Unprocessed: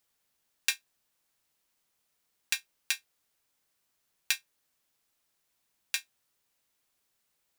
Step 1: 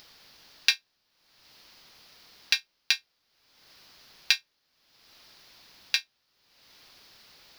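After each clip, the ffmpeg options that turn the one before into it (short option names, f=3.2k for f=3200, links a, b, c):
-af "highshelf=f=6.2k:t=q:w=3:g=-9,acompressor=mode=upward:threshold=-43dB:ratio=2.5,volume=4.5dB"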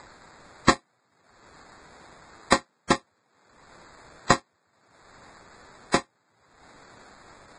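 -af "acrusher=samples=15:mix=1:aa=0.000001,volume=4.5dB" -ar 22050 -c:a libvorbis -b:a 16k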